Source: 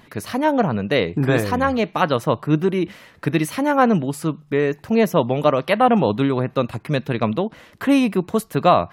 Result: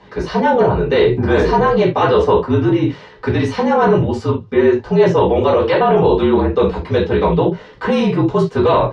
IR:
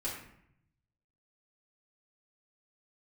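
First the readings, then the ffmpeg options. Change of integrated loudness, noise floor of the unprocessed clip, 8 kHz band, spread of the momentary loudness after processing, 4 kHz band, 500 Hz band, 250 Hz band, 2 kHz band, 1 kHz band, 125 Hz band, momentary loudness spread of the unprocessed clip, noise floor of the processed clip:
+5.0 dB, -51 dBFS, no reading, 6 LU, +2.5 dB, +7.0 dB, +3.0 dB, +2.5 dB, +3.5 dB, +5.0 dB, 8 LU, -40 dBFS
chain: -filter_complex "[1:a]atrim=start_sample=2205,afade=t=out:st=0.22:d=0.01,atrim=end_sample=10143,asetrate=83790,aresample=44100[s0];[0:a][s0]afir=irnorm=-1:irlink=0,apsyclip=8.41,highpass=100,equalizer=f=430:t=q:w=4:g=10,equalizer=f=980:t=q:w=4:g=5,equalizer=f=2500:t=q:w=4:g=-5,lowpass=f=5800:w=0.5412,lowpass=f=5800:w=1.3066,afreqshift=-47,volume=0.299"

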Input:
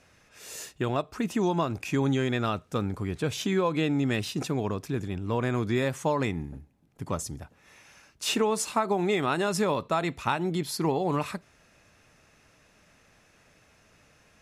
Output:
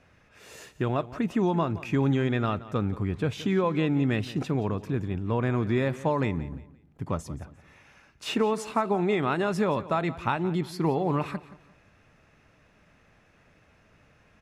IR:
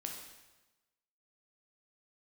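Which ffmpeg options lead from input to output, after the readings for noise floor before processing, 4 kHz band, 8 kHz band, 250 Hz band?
-62 dBFS, -4.5 dB, -10.5 dB, +1.5 dB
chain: -af "bass=f=250:g=3,treble=f=4000:g=-12,aecho=1:1:174|348|522:0.141|0.0452|0.0145"

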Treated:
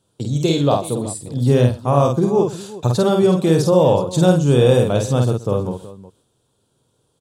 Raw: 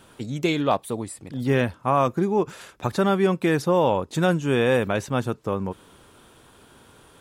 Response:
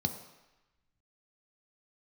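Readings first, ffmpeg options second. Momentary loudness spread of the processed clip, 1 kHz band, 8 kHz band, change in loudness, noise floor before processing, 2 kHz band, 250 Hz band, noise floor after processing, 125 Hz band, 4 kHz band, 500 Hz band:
10 LU, +2.0 dB, +9.5 dB, +6.5 dB, -54 dBFS, -4.0 dB, +6.0 dB, -67 dBFS, +11.0 dB, +6.0 dB, +7.0 dB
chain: -filter_complex "[0:a]agate=range=0.1:threshold=0.00708:ratio=16:detection=peak,equalizer=f=125:t=o:w=1:g=11,equalizer=f=500:t=o:w=1:g=6,equalizer=f=2000:t=o:w=1:g=-11,equalizer=f=4000:t=o:w=1:g=7,equalizer=f=8000:t=o:w=1:g=8,asplit=2[s0][s1];[s1]aecho=0:1:49|125|372:0.668|0.126|0.15[s2];[s0][s2]amix=inputs=2:normalize=0"

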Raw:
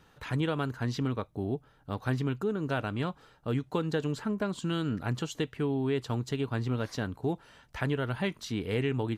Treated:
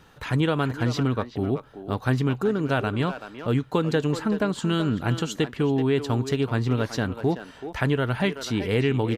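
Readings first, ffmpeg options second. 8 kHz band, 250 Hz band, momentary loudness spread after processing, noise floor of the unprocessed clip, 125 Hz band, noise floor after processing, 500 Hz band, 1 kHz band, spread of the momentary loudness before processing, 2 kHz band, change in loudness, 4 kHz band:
+7.0 dB, +7.0 dB, 5 LU, -62 dBFS, +7.0 dB, -48 dBFS, +7.5 dB, +7.5 dB, 5 LU, +7.5 dB, +7.0 dB, +7.0 dB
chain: -filter_complex "[0:a]asplit=2[s0][s1];[s1]adelay=380,highpass=300,lowpass=3400,asoftclip=type=hard:threshold=0.0562,volume=0.355[s2];[s0][s2]amix=inputs=2:normalize=0,volume=2.24"

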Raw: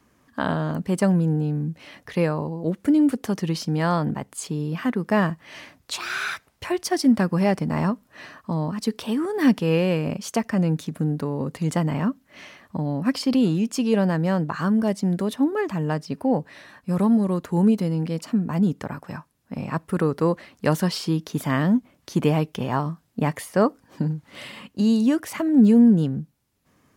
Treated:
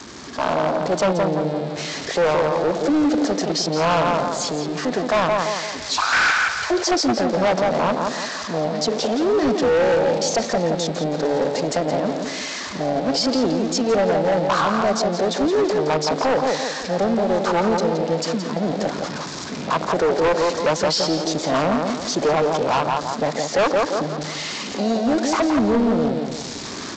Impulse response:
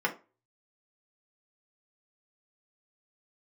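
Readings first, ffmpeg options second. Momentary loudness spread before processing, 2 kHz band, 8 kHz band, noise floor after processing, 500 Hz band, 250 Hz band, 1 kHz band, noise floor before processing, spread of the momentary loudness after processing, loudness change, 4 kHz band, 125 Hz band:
13 LU, +8.0 dB, +9.5 dB, -31 dBFS, +8.0 dB, -2.0 dB, +9.0 dB, -63 dBFS, 7 LU, +2.5 dB, +10.5 dB, -5.5 dB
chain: -filter_complex "[0:a]aeval=exprs='val(0)+0.5*0.0891*sgn(val(0))':c=same,afwtdn=0.1,acrossover=split=460 4400:gain=0.0891 1 0.2[s0][s1][s2];[s0][s1][s2]amix=inputs=3:normalize=0,asplit=2[s3][s4];[s4]adelay=170,lowpass=f=3300:p=1,volume=0.562,asplit=2[s5][s6];[s6]adelay=170,lowpass=f=3300:p=1,volume=0.4,asplit=2[s7][s8];[s8]adelay=170,lowpass=f=3300:p=1,volume=0.4,asplit=2[s9][s10];[s10]adelay=170,lowpass=f=3300:p=1,volume=0.4,asplit=2[s11][s12];[s12]adelay=170,lowpass=f=3300:p=1,volume=0.4[s13];[s3][s5][s7][s9][s11][s13]amix=inputs=6:normalize=0,acrossover=split=160[s14][s15];[s15]dynaudnorm=f=190:g=5:m=2.24[s16];[s14][s16]amix=inputs=2:normalize=0,aexciter=amount=6.7:drive=4.2:freq=4100,asoftclip=type=hard:threshold=0.106,volume=1.78" -ar 16000 -c:a g722

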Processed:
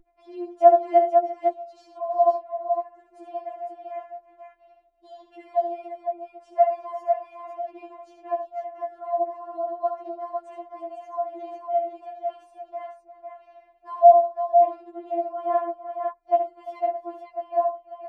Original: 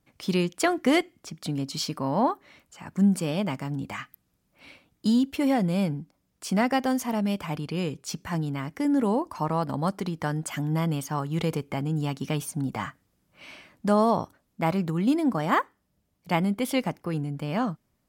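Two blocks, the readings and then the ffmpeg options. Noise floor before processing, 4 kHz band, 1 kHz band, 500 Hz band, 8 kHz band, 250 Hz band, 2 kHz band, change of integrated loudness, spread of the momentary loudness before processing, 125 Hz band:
-74 dBFS, under -20 dB, +7.5 dB, +8.0 dB, under -30 dB, -16.5 dB, under -15 dB, +3.0 dB, 12 LU, under -40 dB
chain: -af "aderivative,aecho=1:1:70|98|342|503:0.376|0.141|0.15|0.562,acontrast=71,lowpass=f=700:t=q:w=8.4,aeval=exprs='val(0)+0.00355*(sin(2*PI*60*n/s)+sin(2*PI*2*60*n/s)/2+sin(2*PI*3*60*n/s)/3+sin(2*PI*4*60*n/s)/4+sin(2*PI*5*60*n/s)/5)':c=same,equalizer=f=63:t=o:w=0.77:g=2,afftfilt=real='re*4*eq(mod(b,16),0)':imag='im*4*eq(mod(b,16),0)':win_size=2048:overlap=0.75,volume=1.78"

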